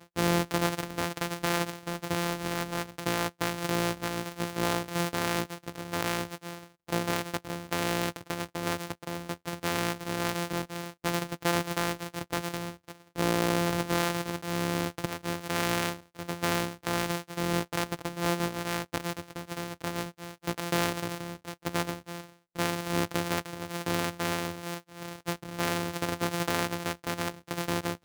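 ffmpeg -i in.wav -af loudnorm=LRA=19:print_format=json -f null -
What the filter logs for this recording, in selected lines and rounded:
"input_i" : "-31.7",
"input_tp" : "-10.1",
"input_lra" : "2.7",
"input_thresh" : "-41.8",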